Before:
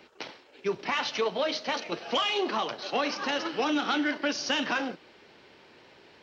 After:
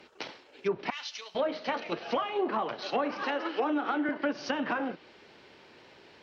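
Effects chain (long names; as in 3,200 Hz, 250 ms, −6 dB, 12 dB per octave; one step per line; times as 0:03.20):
0:00.90–0:01.35: first difference
0:03.23–0:04.09: high-pass filter 270 Hz 24 dB per octave
treble cut that deepens with the level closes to 1,300 Hz, closed at −24.5 dBFS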